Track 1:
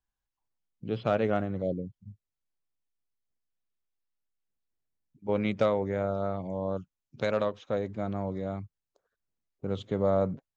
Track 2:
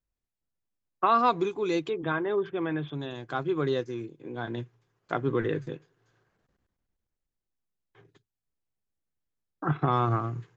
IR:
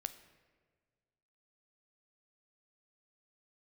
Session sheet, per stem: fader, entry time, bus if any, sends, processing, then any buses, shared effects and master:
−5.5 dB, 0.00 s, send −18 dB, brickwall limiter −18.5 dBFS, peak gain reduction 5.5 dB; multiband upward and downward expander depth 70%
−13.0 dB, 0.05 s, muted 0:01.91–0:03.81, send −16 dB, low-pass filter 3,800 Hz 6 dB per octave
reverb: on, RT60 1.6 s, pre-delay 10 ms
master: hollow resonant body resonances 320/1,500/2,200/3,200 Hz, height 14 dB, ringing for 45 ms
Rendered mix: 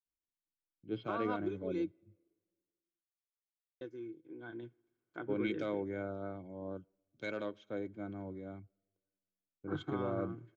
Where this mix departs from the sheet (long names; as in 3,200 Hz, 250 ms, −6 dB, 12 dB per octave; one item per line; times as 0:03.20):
stem 1 −5.5 dB → −13.5 dB
stem 2 −13.0 dB → −19.5 dB